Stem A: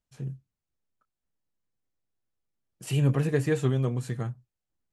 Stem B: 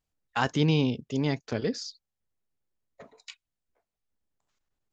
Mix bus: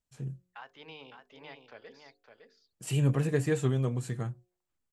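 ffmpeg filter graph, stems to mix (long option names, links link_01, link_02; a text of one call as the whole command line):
ffmpeg -i stem1.wav -i stem2.wav -filter_complex "[0:a]equalizer=frequency=7700:width_type=o:width=0.31:gain=5.5,volume=-2.5dB[link_01];[1:a]acrossover=split=530 3600:gain=0.0794 1 0.0631[link_02][link_03][link_04];[link_02][link_03][link_04]amix=inputs=3:normalize=0,bandreject=frequency=50:width_type=h:width=6,bandreject=frequency=100:width_type=h:width=6,bandreject=frequency=150:width_type=h:width=6,bandreject=frequency=200:width_type=h:width=6,bandreject=frequency=250:width_type=h:width=6,bandreject=frequency=300:width_type=h:width=6,bandreject=frequency=350:width_type=h:width=6,bandreject=frequency=400:width_type=h:width=6,bandreject=frequency=450:width_type=h:width=6,alimiter=limit=-23.5dB:level=0:latency=1:release=290,adelay=200,volume=-11.5dB,asplit=2[link_05][link_06];[link_06]volume=-7dB,aecho=0:1:559:1[link_07];[link_01][link_05][link_07]amix=inputs=3:normalize=0,bandreject=frequency=180.1:width_type=h:width=4,bandreject=frequency=360.2:width_type=h:width=4,bandreject=frequency=540.3:width_type=h:width=4,bandreject=frequency=720.4:width_type=h:width=4" out.wav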